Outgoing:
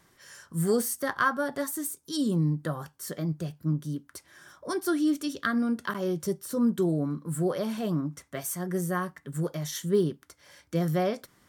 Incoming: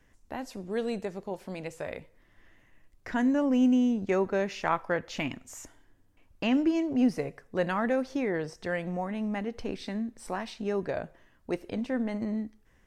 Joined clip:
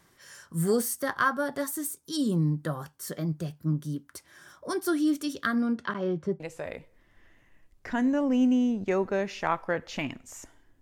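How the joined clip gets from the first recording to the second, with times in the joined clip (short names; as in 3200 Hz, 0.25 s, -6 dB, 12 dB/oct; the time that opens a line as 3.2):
outgoing
5.55–6.4 LPF 7800 Hz -> 1500 Hz
6.4 switch to incoming from 1.61 s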